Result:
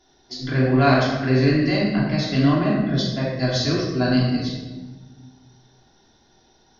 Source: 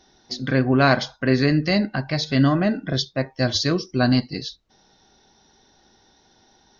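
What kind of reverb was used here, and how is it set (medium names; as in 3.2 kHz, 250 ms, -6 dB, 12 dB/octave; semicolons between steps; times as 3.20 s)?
simulated room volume 890 m³, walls mixed, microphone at 3.1 m; trim -7 dB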